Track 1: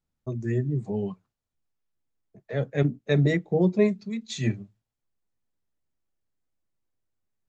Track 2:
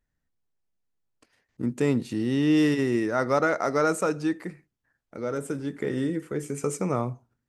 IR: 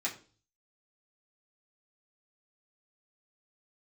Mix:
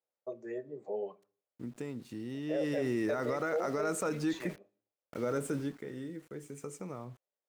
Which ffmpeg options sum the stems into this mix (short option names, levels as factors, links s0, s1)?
-filter_complex "[0:a]lowpass=f=2500:p=1,acompressor=threshold=0.0794:ratio=6,highpass=f=540:t=q:w=4.9,volume=0.376,asplit=2[s0][s1];[s1]volume=0.211[s2];[1:a]acompressor=threshold=0.0631:ratio=6,aeval=exprs='val(0)*gte(abs(val(0)),0.00501)':c=same,volume=0.891,afade=t=in:st=2.43:d=0.68:silence=0.281838,afade=t=out:st=5.57:d=0.22:silence=0.251189[s3];[2:a]atrim=start_sample=2205[s4];[s2][s4]afir=irnorm=-1:irlink=0[s5];[s0][s3][s5]amix=inputs=3:normalize=0,alimiter=limit=0.0631:level=0:latency=1:release=29"